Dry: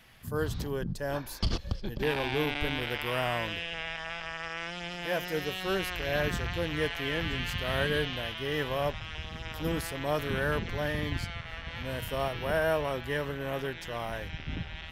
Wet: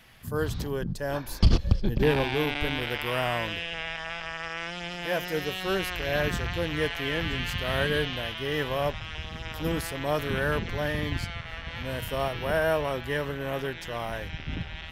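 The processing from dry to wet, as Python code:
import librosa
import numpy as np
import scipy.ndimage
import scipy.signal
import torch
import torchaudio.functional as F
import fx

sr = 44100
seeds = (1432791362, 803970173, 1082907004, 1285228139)

y = fx.rattle_buzz(x, sr, strikes_db=-27.0, level_db=-34.0)
y = fx.low_shelf(y, sr, hz=440.0, db=8.5, at=(1.28, 2.24))
y = y * librosa.db_to_amplitude(2.5)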